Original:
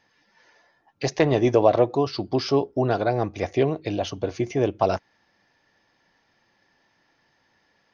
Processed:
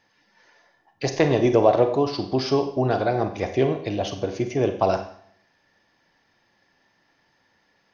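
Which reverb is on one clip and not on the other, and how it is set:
four-comb reverb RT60 0.62 s, combs from 31 ms, DRR 7 dB

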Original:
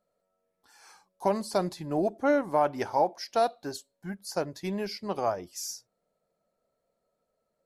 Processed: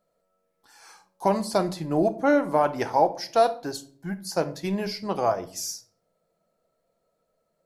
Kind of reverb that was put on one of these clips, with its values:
rectangular room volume 490 cubic metres, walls furnished, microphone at 0.68 metres
level +4 dB

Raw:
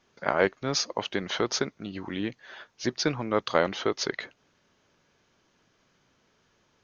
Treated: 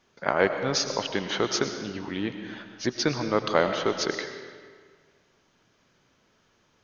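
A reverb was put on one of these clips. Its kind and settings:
comb and all-pass reverb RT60 1.7 s, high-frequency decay 0.8×, pre-delay 65 ms, DRR 7 dB
level +1 dB

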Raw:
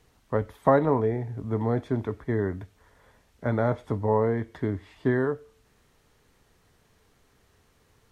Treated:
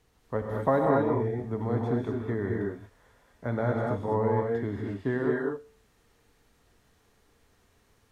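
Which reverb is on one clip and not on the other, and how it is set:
reverb whose tail is shaped and stops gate 260 ms rising, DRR −1 dB
level −5 dB

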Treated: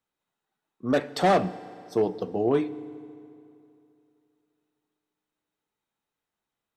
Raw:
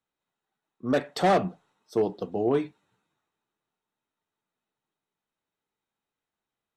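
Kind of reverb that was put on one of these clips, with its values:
feedback delay network reverb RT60 2.7 s, high-frequency decay 0.8×, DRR 15.5 dB
level +1 dB

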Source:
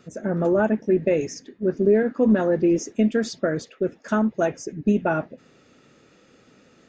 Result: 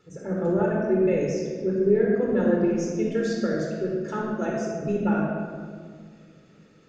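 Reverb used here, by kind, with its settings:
rectangular room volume 2,600 cubic metres, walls mixed, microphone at 4.2 metres
level −9.5 dB

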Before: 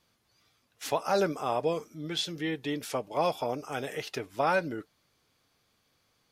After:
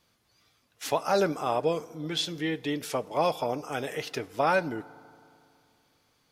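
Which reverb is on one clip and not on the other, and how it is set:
feedback delay network reverb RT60 2.5 s, low-frequency decay 1.05×, high-frequency decay 0.5×, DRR 19 dB
level +2 dB

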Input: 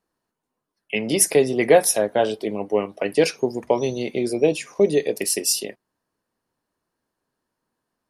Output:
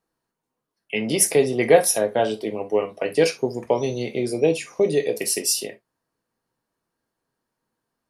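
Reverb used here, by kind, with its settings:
reverb whose tail is shaped and stops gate 90 ms falling, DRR 6 dB
level −1.5 dB

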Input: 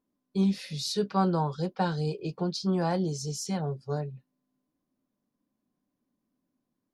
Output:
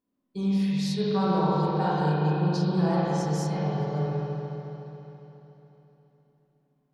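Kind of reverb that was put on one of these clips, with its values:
spring reverb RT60 3.6 s, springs 33/51 ms, chirp 70 ms, DRR −8.5 dB
level −5 dB

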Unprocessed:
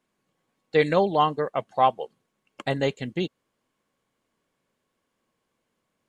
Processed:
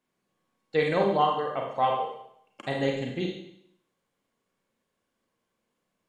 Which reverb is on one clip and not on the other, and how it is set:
four-comb reverb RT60 0.71 s, combs from 32 ms, DRR 0 dB
level −5.5 dB

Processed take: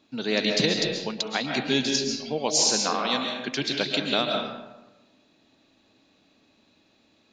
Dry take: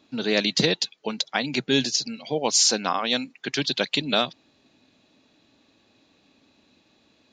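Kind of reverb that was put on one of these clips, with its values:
comb and all-pass reverb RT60 1.1 s, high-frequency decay 0.55×, pre-delay 95 ms, DRR 2 dB
level −3 dB

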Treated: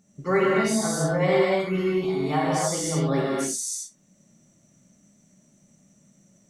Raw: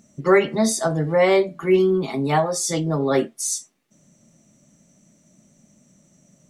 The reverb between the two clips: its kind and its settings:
reverb whose tail is shaped and stops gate 320 ms flat, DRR −6 dB
level −9.5 dB

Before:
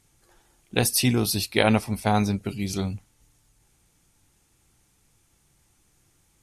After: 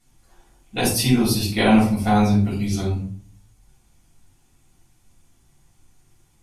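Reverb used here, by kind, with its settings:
rectangular room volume 420 cubic metres, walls furnished, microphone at 7 metres
level −8 dB

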